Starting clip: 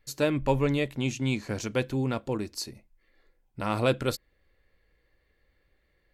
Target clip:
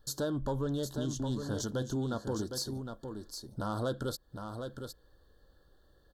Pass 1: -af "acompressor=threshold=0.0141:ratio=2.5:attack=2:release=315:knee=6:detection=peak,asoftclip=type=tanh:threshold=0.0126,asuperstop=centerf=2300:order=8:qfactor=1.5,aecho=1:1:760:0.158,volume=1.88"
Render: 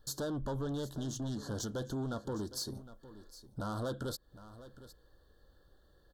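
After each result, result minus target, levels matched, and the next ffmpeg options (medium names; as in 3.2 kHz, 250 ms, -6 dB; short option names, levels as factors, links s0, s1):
echo-to-direct -9 dB; saturation: distortion +8 dB
-af "acompressor=threshold=0.0141:ratio=2.5:attack=2:release=315:knee=6:detection=peak,asoftclip=type=tanh:threshold=0.0126,asuperstop=centerf=2300:order=8:qfactor=1.5,aecho=1:1:760:0.447,volume=1.88"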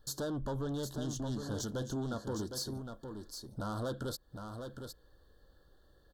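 saturation: distortion +8 dB
-af "acompressor=threshold=0.0141:ratio=2.5:attack=2:release=315:knee=6:detection=peak,asoftclip=type=tanh:threshold=0.0299,asuperstop=centerf=2300:order=8:qfactor=1.5,aecho=1:1:760:0.447,volume=1.88"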